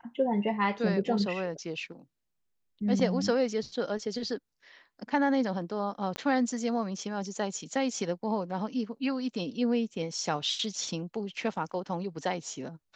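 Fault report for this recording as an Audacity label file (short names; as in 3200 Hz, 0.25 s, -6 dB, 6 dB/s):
6.160000	6.160000	pop -19 dBFS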